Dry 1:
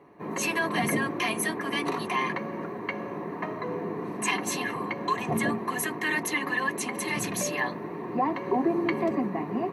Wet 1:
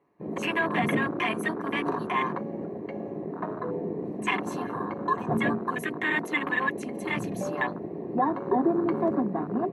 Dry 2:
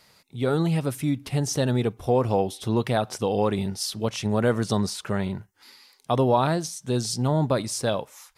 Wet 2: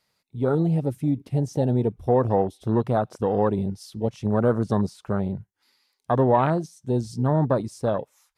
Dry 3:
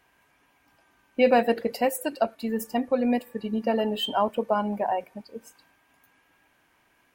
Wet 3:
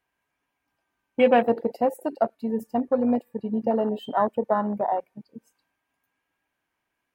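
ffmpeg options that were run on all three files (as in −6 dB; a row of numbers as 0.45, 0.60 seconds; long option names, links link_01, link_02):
-af "afwtdn=0.0355,volume=1.5dB"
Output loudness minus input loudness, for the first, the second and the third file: 0.0, +1.0, +1.0 LU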